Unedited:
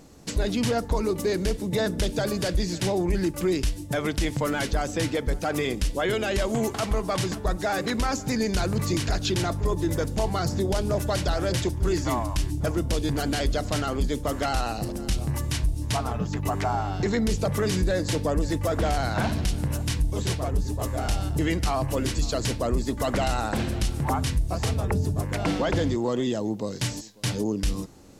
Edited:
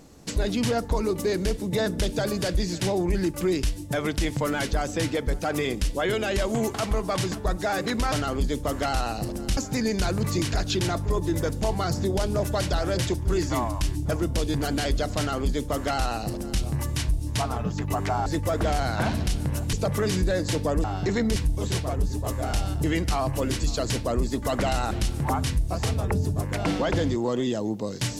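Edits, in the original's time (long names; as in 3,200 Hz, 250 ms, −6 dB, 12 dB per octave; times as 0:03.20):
0:13.72–0:15.17: duplicate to 0:08.12
0:16.81–0:17.33: swap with 0:18.44–0:19.91
0:23.46–0:23.71: remove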